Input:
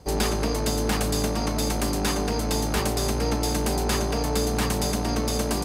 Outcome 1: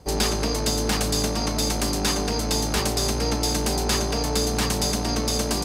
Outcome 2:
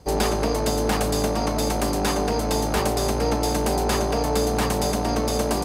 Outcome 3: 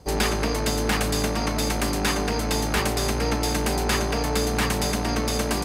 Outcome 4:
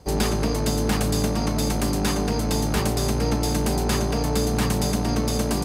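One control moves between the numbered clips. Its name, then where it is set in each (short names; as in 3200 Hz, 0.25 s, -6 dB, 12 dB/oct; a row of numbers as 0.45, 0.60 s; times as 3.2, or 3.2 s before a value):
dynamic EQ, frequency: 5200, 660, 2000, 140 Hz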